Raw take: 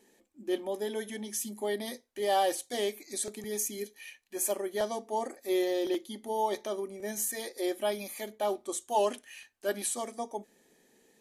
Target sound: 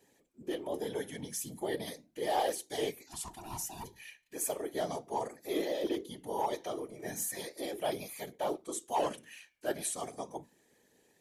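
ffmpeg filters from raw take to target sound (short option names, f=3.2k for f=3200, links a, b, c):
-filter_complex "[0:a]asplit=3[a][b][c];[a]afade=t=out:st=3.06:d=0.02[d];[b]aeval=exprs='val(0)*sin(2*PI*530*n/s)':c=same,afade=t=in:st=3.06:d=0.02,afade=t=out:st=3.83:d=0.02[e];[c]afade=t=in:st=3.83:d=0.02[f];[d][e][f]amix=inputs=3:normalize=0,bandreject=f=60:t=h:w=6,bandreject=f=120:t=h:w=6,bandreject=f=180:t=h:w=6,bandreject=f=240:t=h:w=6,bandreject=f=300:t=h:w=6,bandreject=f=360:t=h:w=6,flanger=delay=1.2:depth=7.1:regen=89:speed=0.36:shape=sinusoidal,asplit=2[g][h];[h]aeval=exprs='0.0398*(abs(mod(val(0)/0.0398+3,4)-2)-1)':c=same,volume=-8.5dB[i];[g][i]amix=inputs=2:normalize=0,afftfilt=real='hypot(re,im)*cos(2*PI*random(0))':imag='hypot(re,im)*sin(2*PI*random(1))':win_size=512:overlap=0.75,volume=4.5dB"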